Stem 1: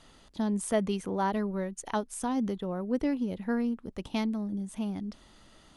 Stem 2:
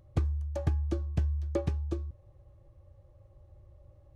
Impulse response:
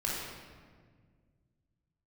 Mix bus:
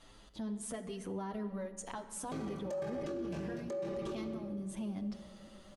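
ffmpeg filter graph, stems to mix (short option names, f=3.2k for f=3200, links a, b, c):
-filter_complex "[0:a]acompressor=threshold=-34dB:ratio=6,asplit=2[a][b];[b]adelay=7.6,afreqshift=0.86[c];[a][c]amix=inputs=2:normalize=1,volume=-0.5dB,asplit=2[d][e];[e]volume=-15dB[f];[1:a]aecho=1:1:5.1:0.92,flanger=delay=17.5:depth=4:speed=0.92,highpass=250,adelay=2150,volume=0.5dB,asplit=2[g][h];[h]volume=-4.5dB[i];[2:a]atrim=start_sample=2205[j];[f][i]amix=inputs=2:normalize=0[k];[k][j]afir=irnorm=-1:irlink=0[l];[d][g][l]amix=inputs=3:normalize=0,alimiter=level_in=8dB:limit=-24dB:level=0:latency=1:release=15,volume=-8dB"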